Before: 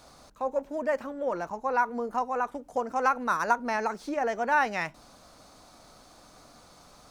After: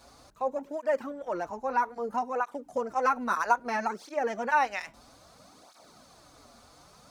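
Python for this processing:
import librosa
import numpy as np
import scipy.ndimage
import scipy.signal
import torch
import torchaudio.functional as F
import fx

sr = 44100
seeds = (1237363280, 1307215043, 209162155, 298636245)

y = fx.flanger_cancel(x, sr, hz=0.61, depth_ms=6.8)
y = y * librosa.db_to_amplitude(1.5)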